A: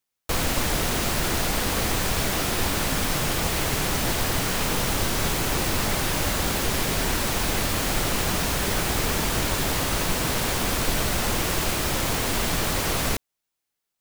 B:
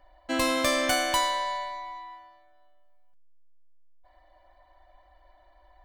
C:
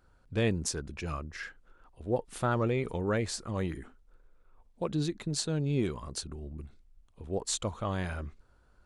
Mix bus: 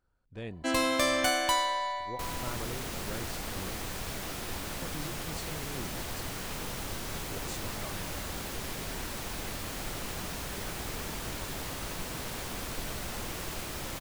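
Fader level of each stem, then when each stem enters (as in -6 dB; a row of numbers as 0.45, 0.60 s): -13.0, -2.0, -12.5 dB; 1.90, 0.35, 0.00 s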